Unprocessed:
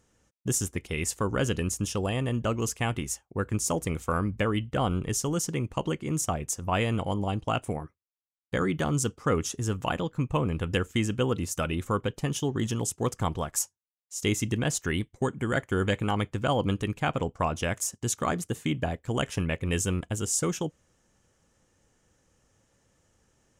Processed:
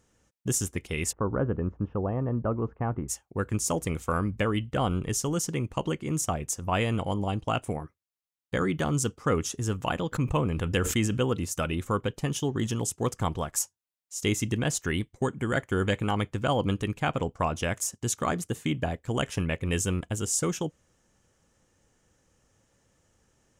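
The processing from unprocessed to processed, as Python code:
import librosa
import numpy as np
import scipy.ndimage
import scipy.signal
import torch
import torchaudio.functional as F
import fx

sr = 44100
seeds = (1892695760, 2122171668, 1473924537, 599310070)

y = fx.lowpass(x, sr, hz=1300.0, slope=24, at=(1.11, 3.08), fade=0.02)
y = fx.sustainer(y, sr, db_per_s=49.0, at=(10.12, 11.17), fade=0.02)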